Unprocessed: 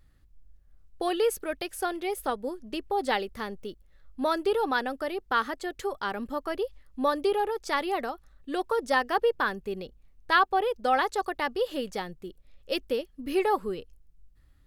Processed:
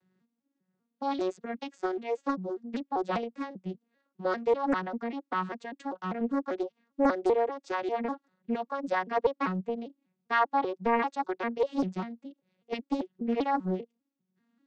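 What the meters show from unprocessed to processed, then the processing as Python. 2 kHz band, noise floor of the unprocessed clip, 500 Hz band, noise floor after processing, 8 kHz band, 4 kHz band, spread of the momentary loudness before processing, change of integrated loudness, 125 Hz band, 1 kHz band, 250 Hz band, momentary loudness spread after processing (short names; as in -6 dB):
-6.0 dB, -59 dBFS, -2.5 dB, -83 dBFS, under -10 dB, -11.0 dB, 12 LU, -2.5 dB, n/a, -3.0 dB, +2.5 dB, 11 LU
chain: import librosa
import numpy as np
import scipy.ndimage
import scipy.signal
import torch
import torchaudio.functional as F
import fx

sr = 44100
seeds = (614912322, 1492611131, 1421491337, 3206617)

y = fx.vocoder_arp(x, sr, chord='major triad', root=54, every_ms=197)
y = fx.peak_eq(y, sr, hz=620.0, db=-6.0, octaves=0.21)
y = fx.doppler_dist(y, sr, depth_ms=0.86)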